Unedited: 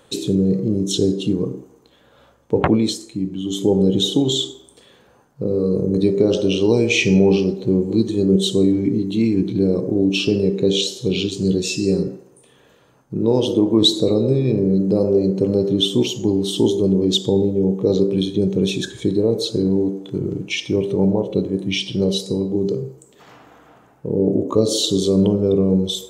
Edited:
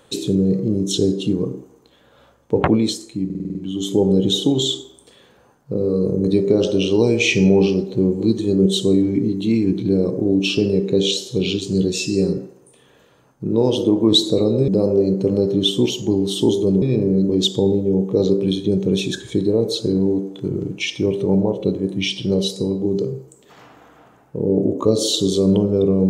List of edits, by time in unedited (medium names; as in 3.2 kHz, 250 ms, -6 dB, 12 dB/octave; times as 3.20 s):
3.25 s: stutter 0.05 s, 7 plays
14.38–14.85 s: move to 16.99 s